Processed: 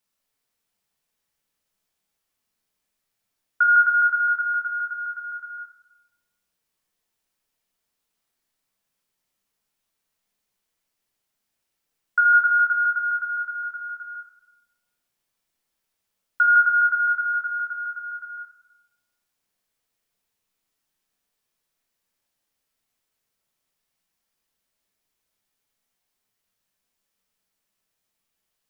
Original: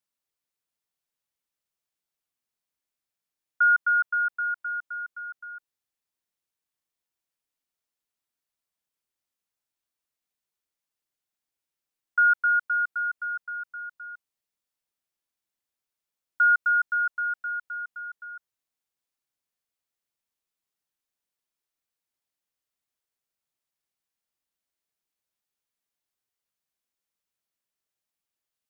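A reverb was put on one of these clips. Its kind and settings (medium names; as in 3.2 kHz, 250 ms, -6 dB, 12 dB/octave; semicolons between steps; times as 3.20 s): simulated room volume 370 m³, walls mixed, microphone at 1.5 m; trim +5.5 dB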